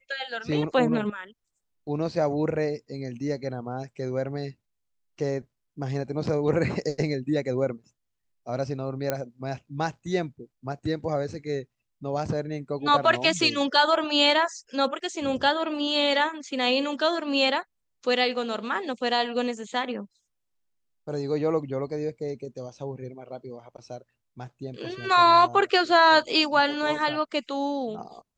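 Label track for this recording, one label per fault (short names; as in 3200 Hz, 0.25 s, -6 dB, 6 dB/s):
9.100000	9.100000	pop -11 dBFS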